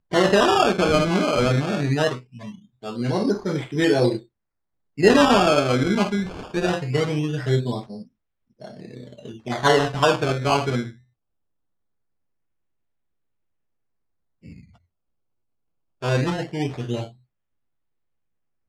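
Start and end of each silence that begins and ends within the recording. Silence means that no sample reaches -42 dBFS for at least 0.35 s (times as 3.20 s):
4.23–4.98 s
8.03–8.60 s
10.94–14.44 s
14.64–16.02 s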